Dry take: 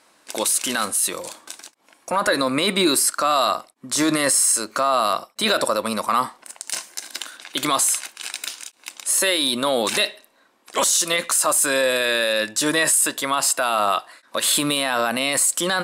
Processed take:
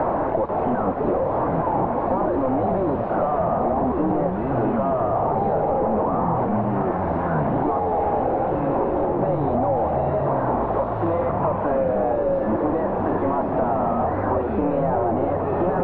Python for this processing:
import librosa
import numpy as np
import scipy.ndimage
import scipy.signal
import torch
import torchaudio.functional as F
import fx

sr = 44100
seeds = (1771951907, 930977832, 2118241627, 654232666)

y = np.sign(x) * np.sqrt(np.mean(np.square(x)))
y = fx.echo_pitch(y, sr, ms=488, semitones=-7, count=3, db_per_echo=-3.0)
y = fx.ladder_lowpass(y, sr, hz=940.0, resonance_pct=40)
y = fx.band_squash(y, sr, depth_pct=100)
y = y * 10.0 ** (7.0 / 20.0)